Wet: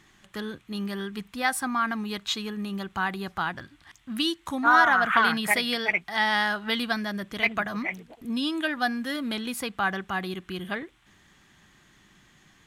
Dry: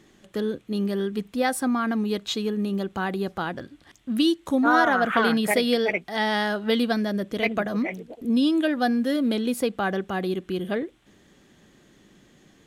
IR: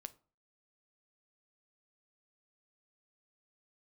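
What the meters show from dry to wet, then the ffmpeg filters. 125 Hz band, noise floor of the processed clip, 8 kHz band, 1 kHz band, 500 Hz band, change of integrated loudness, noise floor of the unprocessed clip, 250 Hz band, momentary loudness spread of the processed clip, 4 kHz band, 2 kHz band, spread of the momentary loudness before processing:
−5.5 dB, −60 dBFS, 0.0 dB, +1.0 dB, −9.0 dB, −2.0 dB, −58 dBFS, −7.5 dB, 14 LU, +1.0 dB, +3.0 dB, 9 LU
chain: -af "equalizer=frequency=250:width_type=o:width=1:gain=-6,equalizer=frequency=500:width_type=o:width=1:gain=-12,equalizer=frequency=1000:width_type=o:width=1:gain=5,equalizer=frequency=2000:width_type=o:width=1:gain=3"

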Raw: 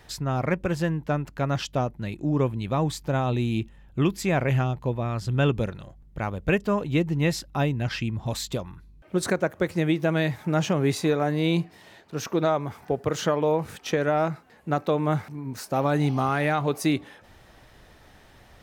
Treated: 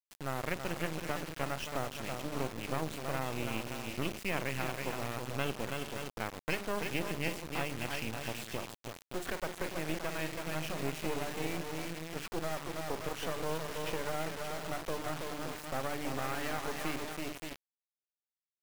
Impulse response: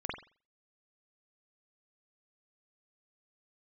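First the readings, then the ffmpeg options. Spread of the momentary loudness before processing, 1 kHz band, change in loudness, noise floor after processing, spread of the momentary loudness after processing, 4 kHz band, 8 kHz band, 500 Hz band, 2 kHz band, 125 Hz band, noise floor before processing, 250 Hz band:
7 LU, −9.5 dB, −11.5 dB, below −85 dBFS, 4 LU, −6.0 dB, −5.5 dB, −12.0 dB, −6.5 dB, −16.0 dB, −53 dBFS, −14.0 dB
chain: -filter_complex "[0:a]highpass=190,highshelf=frequency=3500:width_type=q:width=3:gain=-8,bandreject=frequency=50:width_type=h:width=6,bandreject=frequency=100:width_type=h:width=6,bandreject=frequency=150:width_type=h:width=6,bandreject=frequency=200:width_type=h:width=6,bandreject=frequency=250:width_type=h:width=6,bandreject=frequency=300:width_type=h:width=6,bandreject=frequency=350:width_type=h:width=6,bandreject=frequency=400:width_type=h:width=6,aecho=1:1:326|421|571:0.447|0.133|0.251,acompressor=threshold=-26dB:ratio=2,asplit=2[link_01][link_02];[link_02]equalizer=frequency=490:width_type=o:width=0.29:gain=-4[link_03];[1:a]atrim=start_sample=2205[link_04];[link_03][link_04]afir=irnorm=-1:irlink=0,volume=-17.5dB[link_05];[link_01][link_05]amix=inputs=2:normalize=0,acrusher=bits=3:dc=4:mix=0:aa=0.000001,volume=-5.5dB"

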